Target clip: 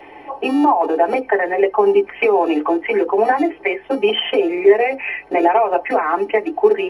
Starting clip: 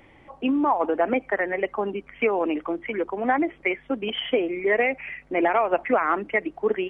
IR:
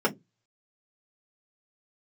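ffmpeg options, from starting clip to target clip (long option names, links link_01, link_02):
-filter_complex "[0:a]acrossover=split=170[link_01][link_02];[link_01]acrusher=samples=42:mix=1:aa=0.000001[link_03];[link_02]acompressor=threshold=-29dB:ratio=6[link_04];[link_03][link_04]amix=inputs=2:normalize=0[link_05];[1:a]atrim=start_sample=2205,asetrate=83790,aresample=44100[link_06];[link_05][link_06]afir=irnorm=-1:irlink=0,volume=4.5dB"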